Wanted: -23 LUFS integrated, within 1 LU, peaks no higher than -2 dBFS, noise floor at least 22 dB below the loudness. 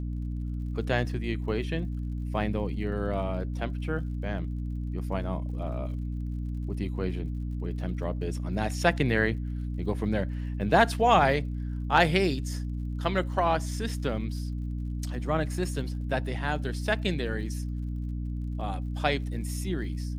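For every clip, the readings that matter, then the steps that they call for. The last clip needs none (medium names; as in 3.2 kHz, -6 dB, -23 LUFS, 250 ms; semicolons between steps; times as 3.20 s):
tick rate 55 per s; hum 60 Hz; highest harmonic 300 Hz; hum level -30 dBFS; loudness -29.5 LUFS; peak level -7.5 dBFS; loudness target -23.0 LUFS
-> de-click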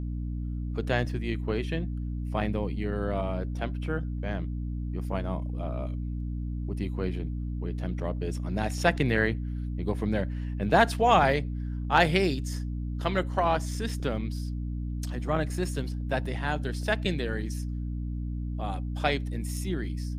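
tick rate 0.40 per s; hum 60 Hz; highest harmonic 300 Hz; hum level -30 dBFS
-> hum notches 60/120/180/240/300 Hz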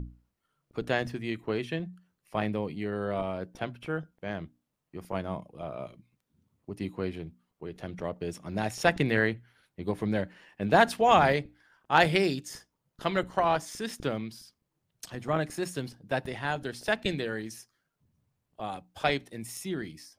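hum not found; loudness -30.5 LUFS; peak level -8.0 dBFS; loudness target -23.0 LUFS
-> trim +7.5 dB; peak limiter -2 dBFS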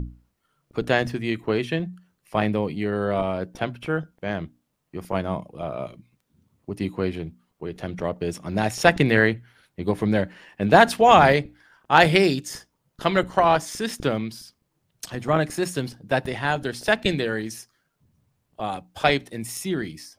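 loudness -23.0 LUFS; peak level -2.0 dBFS; noise floor -74 dBFS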